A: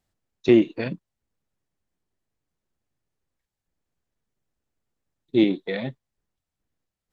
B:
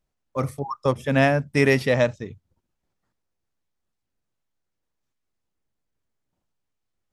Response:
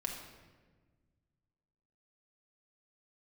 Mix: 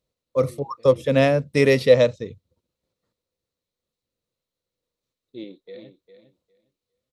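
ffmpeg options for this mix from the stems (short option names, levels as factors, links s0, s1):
-filter_complex "[0:a]volume=0.106,asplit=2[s0][s1];[s1]volume=0.282[s2];[1:a]highpass=51,volume=0.944,asplit=2[s3][s4];[s4]apad=whole_len=318477[s5];[s0][s5]sidechaincompress=threshold=0.02:ratio=8:attack=7.1:release=923[s6];[s2]aecho=0:1:405|810|1215:1|0.17|0.0289[s7];[s6][s3][s7]amix=inputs=3:normalize=0,equalizer=f=500:t=o:w=0.33:g=12,equalizer=f=800:t=o:w=0.33:g=-8,equalizer=f=1600:t=o:w=0.33:g=-7,equalizer=f=4000:t=o:w=0.33:g=9"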